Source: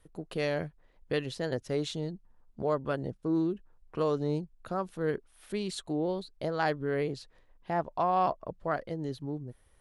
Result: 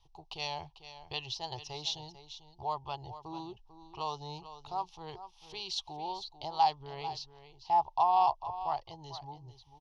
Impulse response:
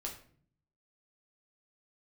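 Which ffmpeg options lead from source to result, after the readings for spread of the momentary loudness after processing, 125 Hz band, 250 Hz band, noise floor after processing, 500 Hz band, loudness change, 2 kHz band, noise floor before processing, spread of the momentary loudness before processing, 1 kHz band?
20 LU, -11.5 dB, -17.5 dB, -62 dBFS, -12.0 dB, -2.0 dB, -9.5 dB, -64 dBFS, 10 LU, +3.5 dB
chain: -af "firequalizer=gain_entry='entry(110,0);entry(230,-29);entry(360,-9);entry(520,-18);entry(840,14);entry(1500,-20);entry(2800,7);entry(5800,10);entry(8200,-17)':delay=0.05:min_phase=1,aecho=1:1:445:0.224,volume=0.708"

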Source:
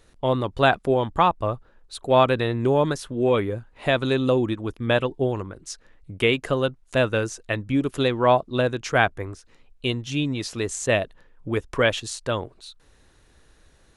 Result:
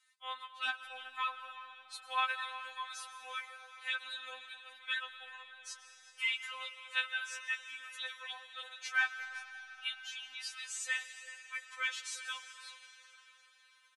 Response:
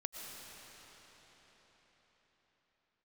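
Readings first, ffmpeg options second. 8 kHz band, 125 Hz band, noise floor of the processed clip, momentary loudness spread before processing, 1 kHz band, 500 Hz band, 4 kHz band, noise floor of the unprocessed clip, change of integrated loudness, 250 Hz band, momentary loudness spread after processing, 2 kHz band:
-9.0 dB, under -40 dB, -65 dBFS, 12 LU, -17.0 dB, -38.5 dB, -9.0 dB, -58 dBFS, -15.5 dB, under -40 dB, 14 LU, -8.0 dB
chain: -filter_complex "[0:a]highpass=f=1400:w=0.5412,highpass=f=1400:w=1.3066,highshelf=f=3200:g=-5.5,asoftclip=type=tanh:threshold=0.355,asplit=2[s0][s1];[s1]adelay=373.2,volume=0.158,highshelf=f=4000:g=-8.4[s2];[s0][s2]amix=inputs=2:normalize=0,asplit=2[s3][s4];[1:a]atrim=start_sample=2205,highshelf=f=7200:g=7.5[s5];[s4][s5]afir=irnorm=-1:irlink=0,volume=0.631[s6];[s3][s6]amix=inputs=2:normalize=0,afftfilt=real='re*3.46*eq(mod(b,12),0)':imag='im*3.46*eq(mod(b,12),0)':win_size=2048:overlap=0.75,volume=0.447"

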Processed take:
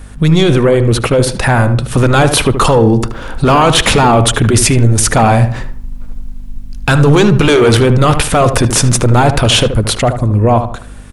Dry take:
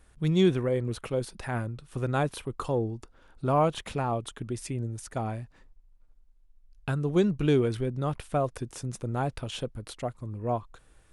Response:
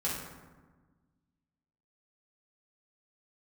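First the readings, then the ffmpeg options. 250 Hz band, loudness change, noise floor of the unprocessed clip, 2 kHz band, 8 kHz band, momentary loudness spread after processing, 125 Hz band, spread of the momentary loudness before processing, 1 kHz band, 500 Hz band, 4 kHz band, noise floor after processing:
+17.5 dB, +19.5 dB, -60 dBFS, +24.5 dB, +29.5 dB, 5 LU, +20.5 dB, 12 LU, +20.5 dB, +17.5 dB, +26.0 dB, -28 dBFS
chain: -filter_complex "[0:a]dynaudnorm=f=430:g=9:m=3.76,aeval=exprs='val(0)+0.00178*(sin(2*PI*50*n/s)+sin(2*PI*2*50*n/s)/2+sin(2*PI*3*50*n/s)/3+sin(2*PI*4*50*n/s)/4+sin(2*PI*5*50*n/s)/5)':c=same,apsyclip=25.1,asplit=2[s0][s1];[s1]adelay=76,lowpass=f=1800:p=1,volume=0.376,asplit=2[s2][s3];[s3]adelay=76,lowpass=f=1800:p=1,volume=0.36,asplit=2[s4][s5];[s5]adelay=76,lowpass=f=1800:p=1,volume=0.36,asplit=2[s6][s7];[s7]adelay=76,lowpass=f=1800:p=1,volume=0.36[s8];[s2][s4][s6][s8]amix=inputs=4:normalize=0[s9];[s0][s9]amix=inputs=2:normalize=0,volume=0.562"

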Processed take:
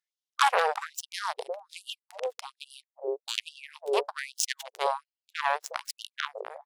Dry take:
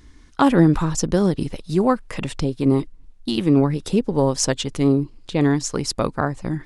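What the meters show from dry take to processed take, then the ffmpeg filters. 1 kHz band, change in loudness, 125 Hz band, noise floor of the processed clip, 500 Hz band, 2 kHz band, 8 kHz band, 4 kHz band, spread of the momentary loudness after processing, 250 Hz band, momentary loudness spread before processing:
-2.5 dB, -11.0 dB, under -40 dB, under -85 dBFS, -11.0 dB, -0.5 dB, -8.5 dB, -4.0 dB, 15 LU, under -35 dB, 9 LU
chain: -filter_complex "[0:a]aeval=exprs='0.794*(cos(1*acos(clip(val(0)/0.794,-1,1)))-cos(1*PI/2))+0.0355*(cos(3*acos(clip(val(0)/0.794,-1,1)))-cos(3*PI/2))+0.0562*(cos(5*acos(clip(val(0)/0.794,-1,1)))-cos(5*PI/2))+0.141*(cos(7*acos(clip(val(0)/0.794,-1,1)))-cos(7*PI/2))':c=same,acrossover=split=470[s0][s1];[s0]adelay=360[s2];[s2][s1]amix=inputs=2:normalize=0,afftfilt=real='re*gte(b*sr/1024,370*pow(2800/370,0.5+0.5*sin(2*PI*1.2*pts/sr)))':imag='im*gte(b*sr/1024,370*pow(2800/370,0.5+0.5*sin(2*PI*1.2*pts/sr)))':win_size=1024:overlap=0.75"

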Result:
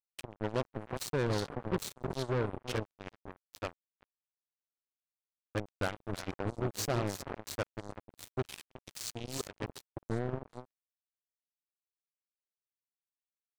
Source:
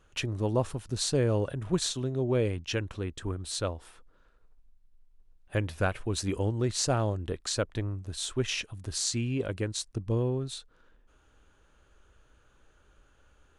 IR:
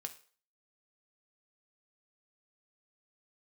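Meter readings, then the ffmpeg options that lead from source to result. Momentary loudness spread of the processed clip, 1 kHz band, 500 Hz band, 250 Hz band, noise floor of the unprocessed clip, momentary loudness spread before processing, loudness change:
15 LU, -2.5 dB, -6.0 dB, -7.0 dB, -64 dBFS, 8 LU, -7.0 dB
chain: -af "aecho=1:1:134|313|369:0.1|0.316|0.422,afwtdn=0.01,acrusher=bits=3:mix=0:aa=0.5,volume=0.473"

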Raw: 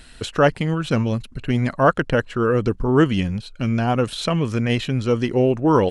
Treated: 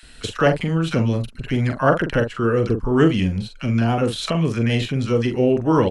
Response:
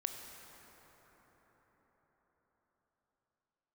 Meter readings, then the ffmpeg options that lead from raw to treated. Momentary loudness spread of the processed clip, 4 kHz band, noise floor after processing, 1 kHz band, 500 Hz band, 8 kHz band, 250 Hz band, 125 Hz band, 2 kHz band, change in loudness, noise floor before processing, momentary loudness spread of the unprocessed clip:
6 LU, +0.5 dB, -43 dBFS, -1.5 dB, 0.0 dB, +0.5 dB, +0.5 dB, +1.0 dB, 0.0 dB, +0.5 dB, -43 dBFS, 7 LU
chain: -filter_complex "[0:a]asplit=2[s0][s1];[s1]adelay=43,volume=0.422[s2];[s0][s2]amix=inputs=2:normalize=0,acrossover=split=970[s3][s4];[s3]adelay=30[s5];[s5][s4]amix=inputs=2:normalize=0"

